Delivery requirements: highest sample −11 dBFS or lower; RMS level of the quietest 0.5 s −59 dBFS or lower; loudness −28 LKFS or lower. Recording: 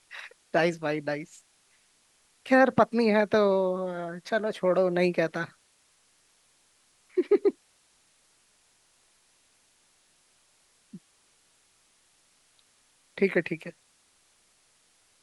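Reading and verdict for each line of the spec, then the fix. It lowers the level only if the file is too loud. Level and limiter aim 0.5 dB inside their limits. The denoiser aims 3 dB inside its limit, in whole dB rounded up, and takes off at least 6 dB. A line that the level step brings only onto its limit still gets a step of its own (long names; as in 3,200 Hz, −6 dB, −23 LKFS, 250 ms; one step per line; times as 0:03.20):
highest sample −7.0 dBFS: out of spec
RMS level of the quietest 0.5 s −66 dBFS: in spec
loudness −26.5 LKFS: out of spec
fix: level −2 dB
brickwall limiter −11.5 dBFS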